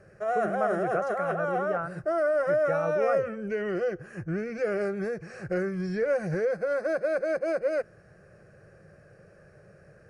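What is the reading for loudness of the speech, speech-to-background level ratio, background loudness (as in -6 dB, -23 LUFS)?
-33.5 LUFS, -4.5 dB, -29.0 LUFS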